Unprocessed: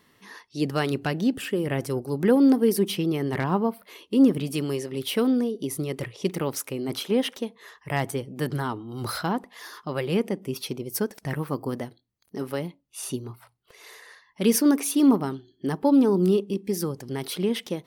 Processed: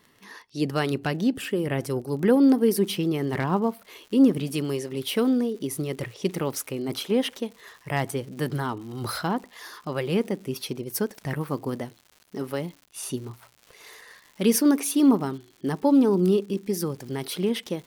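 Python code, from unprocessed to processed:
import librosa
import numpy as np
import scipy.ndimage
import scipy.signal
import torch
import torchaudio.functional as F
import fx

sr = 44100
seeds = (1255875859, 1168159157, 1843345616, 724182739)

y = fx.dmg_crackle(x, sr, seeds[0], per_s=fx.steps((0.0, 39.0), (2.71, 220.0)), level_db=-40.0)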